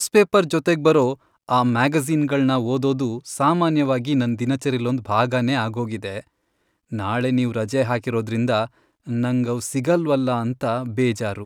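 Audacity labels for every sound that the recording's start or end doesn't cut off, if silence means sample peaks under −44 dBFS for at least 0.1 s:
1.480000	6.210000	sound
6.910000	8.670000	sound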